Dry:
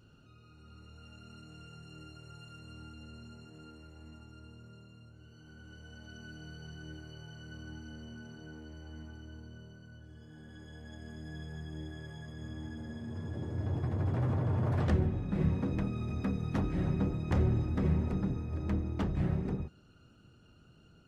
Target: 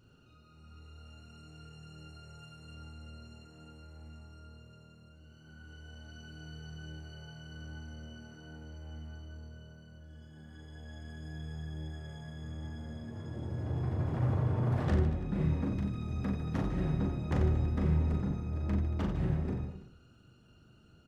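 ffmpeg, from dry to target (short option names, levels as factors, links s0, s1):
-filter_complex "[0:a]asettb=1/sr,asplit=3[s0][s1][s2];[s0]atrim=end=15.694[s3];[s1]atrim=start=15.69:end=16.2,asetpts=PTS-STARTPTS,afade=t=in:d=0.004:c=qsin,afade=t=out:st=0.506:d=0.004:c=qsin,acrossover=split=230|3000[s4][s5][s6];[s5]acompressor=threshold=0.00708:ratio=6[s7];[s4][s7][s6]amix=inputs=3:normalize=0[s8];[s2]atrim=start=16.196[s9];[s3][s8]acrossfade=d=0.004:c1=hsin:c2=qsin[s10];[s10][s9]acrossfade=d=0.004:c1=qsin:c2=hsin,aecho=1:1:40|90|152.5|230.6|328.3:0.631|0.398|0.251|0.158|0.1,volume=0.75"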